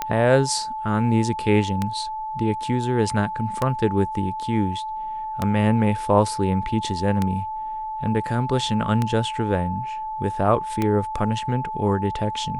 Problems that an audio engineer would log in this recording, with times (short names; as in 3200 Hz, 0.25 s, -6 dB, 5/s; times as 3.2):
tick 33 1/3 rpm -9 dBFS
tone 870 Hz -27 dBFS